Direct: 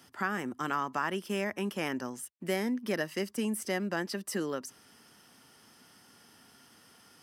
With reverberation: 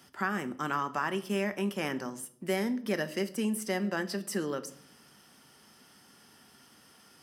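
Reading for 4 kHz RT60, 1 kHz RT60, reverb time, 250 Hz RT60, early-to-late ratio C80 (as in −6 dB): 0.50 s, 0.55 s, 0.65 s, 0.95 s, 20.0 dB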